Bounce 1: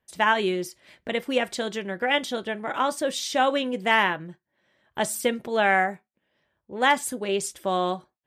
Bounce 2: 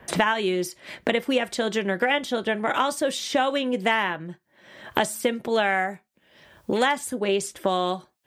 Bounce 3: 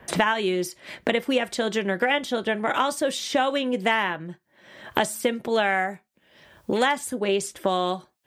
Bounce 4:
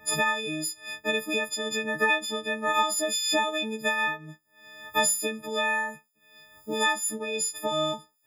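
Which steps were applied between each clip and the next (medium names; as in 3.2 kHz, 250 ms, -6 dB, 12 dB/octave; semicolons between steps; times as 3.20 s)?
three bands compressed up and down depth 100%
no audible change
partials quantised in pitch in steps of 6 st; random flutter of the level, depth 60%; trim -4 dB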